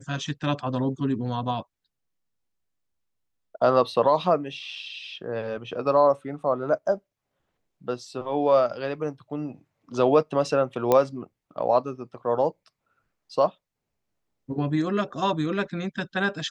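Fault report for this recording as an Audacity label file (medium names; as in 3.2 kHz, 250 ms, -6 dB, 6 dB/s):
10.920000	10.920000	pop -8 dBFS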